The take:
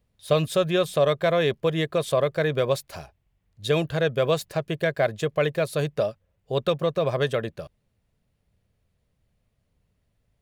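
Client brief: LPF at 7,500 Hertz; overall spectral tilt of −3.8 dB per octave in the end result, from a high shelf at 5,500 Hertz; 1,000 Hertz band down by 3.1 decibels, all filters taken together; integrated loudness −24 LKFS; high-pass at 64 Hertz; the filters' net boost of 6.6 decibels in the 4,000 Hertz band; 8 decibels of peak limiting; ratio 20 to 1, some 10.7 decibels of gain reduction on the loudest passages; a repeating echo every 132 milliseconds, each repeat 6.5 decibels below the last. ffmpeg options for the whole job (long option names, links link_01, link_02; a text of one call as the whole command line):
ffmpeg -i in.wav -af "highpass=64,lowpass=7500,equalizer=frequency=1000:width_type=o:gain=-5,equalizer=frequency=4000:width_type=o:gain=7,highshelf=frequency=5500:gain=3.5,acompressor=threshold=-27dB:ratio=20,alimiter=limit=-22dB:level=0:latency=1,aecho=1:1:132|264|396|528|660|792:0.473|0.222|0.105|0.0491|0.0231|0.0109,volume=9.5dB" out.wav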